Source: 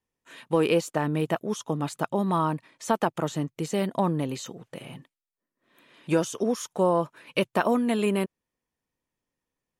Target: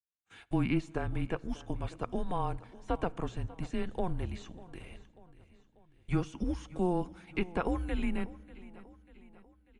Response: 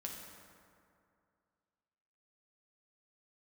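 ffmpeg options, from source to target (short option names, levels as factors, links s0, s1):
-filter_complex "[0:a]acrossover=split=3200[s0][s1];[s1]acompressor=threshold=0.00224:ratio=4:attack=1:release=60[s2];[s0][s2]amix=inputs=2:normalize=0,agate=range=0.1:threshold=0.00355:ratio=16:detection=peak,equalizer=f=920:t=o:w=1.6:g=-3.5,bandreject=f=60:t=h:w=6,bandreject=f=120:t=h:w=6,bandreject=f=180:t=h:w=6,bandreject=f=240:t=h:w=6,bandreject=f=300:t=h:w=6,afreqshift=-180,aecho=1:1:592|1184|1776|2368:0.112|0.0572|0.0292|0.0149,asplit=2[s3][s4];[1:a]atrim=start_sample=2205[s5];[s4][s5]afir=irnorm=-1:irlink=0,volume=0.141[s6];[s3][s6]amix=inputs=2:normalize=0,aresample=22050,aresample=44100,volume=0.501"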